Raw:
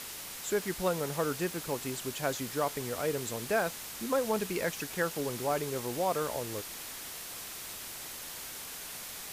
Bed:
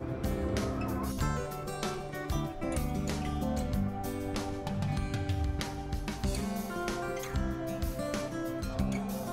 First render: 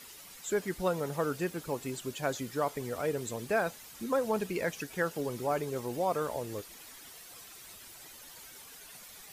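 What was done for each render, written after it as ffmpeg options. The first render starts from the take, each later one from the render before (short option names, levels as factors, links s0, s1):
-af "afftdn=nr=11:nf=-43"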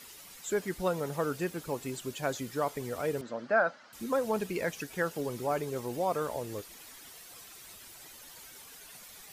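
-filter_complex "[0:a]asettb=1/sr,asplit=3[s0][s1][s2];[s0]atrim=end=3.214[s3];[s1]atrim=start=3.21:end=3.93,asetpts=PTS-STARTPTS,afade=t=in:d=0.004:c=qsin,afade=t=out:st=0.716:d=0.004:c=qsin,highpass=240,equalizer=f=240:t=q:w=4:g=4,equalizer=f=410:t=q:w=4:g=-9,equalizer=f=590:t=q:w=4:g=8,equalizer=f=1400:t=q:w=4:g=10,equalizer=f=2500:t=q:w=4:g=-8,equalizer=f=3600:t=q:w=4:g=-8,lowpass=f=4400:w=0.5412,lowpass=f=4400:w=1.3066[s4];[s2]atrim=start=3.926[s5];[s3][s4]acrossfade=d=0.004:c1=hsin:c2=qsin[s6];[s6][s5]acrossfade=d=0.004:c1=qsin:c2=hsin"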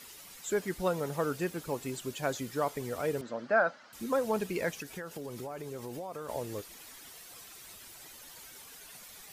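-filter_complex "[0:a]asettb=1/sr,asplit=3[s0][s1][s2];[s0]atrim=end=4.804[s3];[s1]atrim=start=4.8:end=6.29,asetpts=PTS-STARTPTS,afade=t=in:d=0.004:c=qsin,afade=t=out:st=1.486:d=0.004:c=qsin,acompressor=threshold=0.0158:ratio=10:attack=3.2:release=140:knee=1:detection=peak[s4];[s2]atrim=start=6.286[s5];[s3][s4]acrossfade=d=0.004:c1=hsin:c2=qsin[s6];[s6][s5]acrossfade=d=0.004:c1=qsin:c2=hsin"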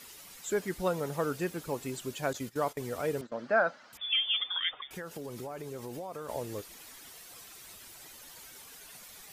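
-filter_complex "[0:a]asettb=1/sr,asplit=3[s0][s1][s2];[s0]atrim=end=2.334[s3];[s1]atrim=start=2.33:end=3.32,asetpts=PTS-STARTPTS,afade=t=in:d=0.004:c=qsin,afade=t=out:st=0.986:d=0.004:c=qsin,agate=range=0.178:threshold=0.00708:ratio=16:release=100:detection=peak[s4];[s2]atrim=start=3.316[s5];[s3][s4]acrossfade=d=0.004:c1=hsin:c2=qsin[s6];[s6][s5]acrossfade=d=0.004:c1=qsin:c2=hsin,asettb=1/sr,asplit=3[s7][s8][s9];[s7]atrim=end=3.974[s10];[s8]atrim=start=3.97:end=4.91,asetpts=PTS-STARTPTS,afade=t=in:d=0.004:c=qsin,afade=t=out:st=0.936:d=0.004:c=qsin,lowpass=f=3100:t=q:w=0.5098,lowpass=f=3100:t=q:w=0.6013,lowpass=f=3100:t=q:w=0.9,lowpass=f=3100:t=q:w=2.563,afreqshift=-3700[s11];[s9]atrim=start=4.906[s12];[s10][s11]acrossfade=d=0.004:c1=hsin:c2=qsin[s13];[s13][s12]acrossfade=d=0.004:c1=qsin:c2=hsin"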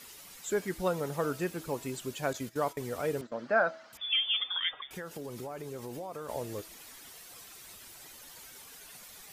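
-af "bandreject=f=324:t=h:w=4,bandreject=f=648:t=h:w=4,bandreject=f=972:t=h:w=4,bandreject=f=1296:t=h:w=4,bandreject=f=1620:t=h:w=4,bandreject=f=1944:t=h:w=4,bandreject=f=2268:t=h:w=4,bandreject=f=2592:t=h:w=4,bandreject=f=2916:t=h:w=4,bandreject=f=3240:t=h:w=4,bandreject=f=3564:t=h:w=4,bandreject=f=3888:t=h:w=4,bandreject=f=4212:t=h:w=4,bandreject=f=4536:t=h:w=4,bandreject=f=4860:t=h:w=4,bandreject=f=5184:t=h:w=4,bandreject=f=5508:t=h:w=4,bandreject=f=5832:t=h:w=4,bandreject=f=6156:t=h:w=4,bandreject=f=6480:t=h:w=4,bandreject=f=6804:t=h:w=4,bandreject=f=7128:t=h:w=4,bandreject=f=7452:t=h:w=4"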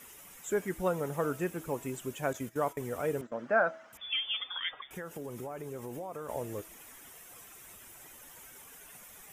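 -af "equalizer=f=4400:w=2.4:g=-15"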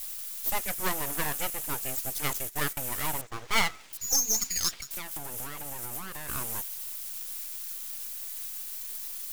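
-af "aeval=exprs='abs(val(0))':c=same,crystalizer=i=5.5:c=0"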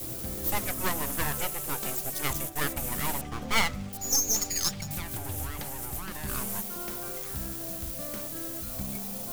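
-filter_complex "[1:a]volume=0.501[s0];[0:a][s0]amix=inputs=2:normalize=0"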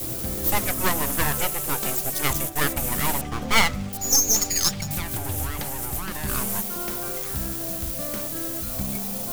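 -af "volume=2.11"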